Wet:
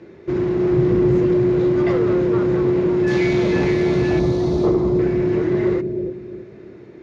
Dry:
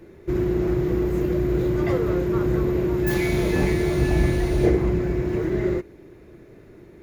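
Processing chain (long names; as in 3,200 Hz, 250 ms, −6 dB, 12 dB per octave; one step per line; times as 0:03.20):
high-pass filter 120 Hz 12 dB per octave
soft clipping −16.5 dBFS, distortion −18 dB
0:04.19–0:04.99: flat-topped bell 2,100 Hz −11.5 dB 1.2 octaves
low-pass filter 5,800 Hz 24 dB per octave
0:00.73–0:01.18: low-shelf EQ 240 Hz +7.5 dB
bucket-brigade delay 315 ms, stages 1,024, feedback 35%, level −4.5 dB
level +4.5 dB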